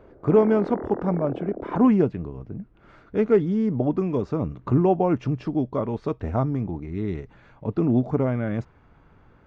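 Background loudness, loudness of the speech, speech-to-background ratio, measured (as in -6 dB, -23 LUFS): -34.5 LUFS, -24.0 LUFS, 10.5 dB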